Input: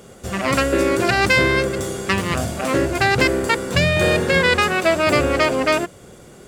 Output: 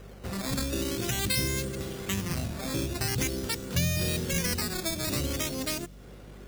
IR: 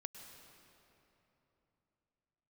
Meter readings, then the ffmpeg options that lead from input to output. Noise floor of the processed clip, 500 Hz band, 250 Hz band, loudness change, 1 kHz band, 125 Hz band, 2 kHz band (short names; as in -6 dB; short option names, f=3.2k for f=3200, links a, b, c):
-47 dBFS, -17.5 dB, -10.5 dB, -12.0 dB, -20.0 dB, -7.0 dB, -18.0 dB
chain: -filter_complex "[0:a]acrusher=samples=10:mix=1:aa=0.000001:lfo=1:lforange=10:lforate=0.46,acrossover=split=280|3000[a][b][c];[b]acompressor=threshold=-33dB:ratio=5[d];[a][d][c]amix=inputs=3:normalize=0,aeval=exprs='val(0)+0.01*(sin(2*PI*50*n/s)+sin(2*PI*2*50*n/s)/2+sin(2*PI*3*50*n/s)/3+sin(2*PI*4*50*n/s)/4+sin(2*PI*5*50*n/s)/5)':c=same,volume=-7dB"